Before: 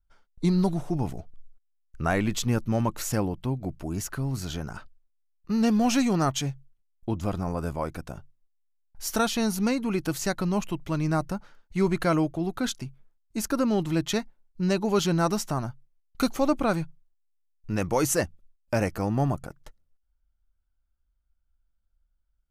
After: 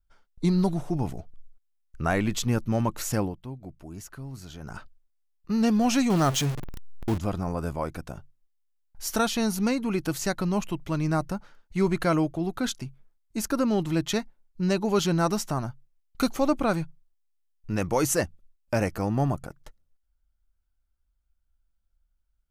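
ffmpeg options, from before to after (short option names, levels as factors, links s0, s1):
-filter_complex "[0:a]asettb=1/sr,asplit=3[s0][s1][s2];[s0]atrim=end=6.104[s3];[s1]atrim=start=6.1:end=7.18,asetpts=PTS-STARTPTS,afade=t=in:d=0.004:c=qsin,afade=t=out:st=1.076:d=0.004:c=qsin,aeval=exprs='val(0)+0.5*0.0422*sgn(val(0))':c=same[s4];[s2]atrim=start=7.176[s5];[s3][s4]acrossfade=d=0.004:c1=hsin:c2=qsin[s6];[s6][s5]acrossfade=d=0.004:c1=qsin:c2=hsin,asplit=3[s7][s8][s9];[s7]atrim=end=3.38,asetpts=PTS-STARTPTS,afade=t=out:st=3.23:d=0.15:silence=0.334965[s10];[s8]atrim=start=3.38:end=4.59,asetpts=PTS-STARTPTS,volume=0.335[s11];[s9]atrim=start=4.59,asetpts=PTS-STARTPTS,afade=t=in:d=0.15:silence=0.334965[s12];[s10][s11][s12]concat=n=3:v=0:a=1"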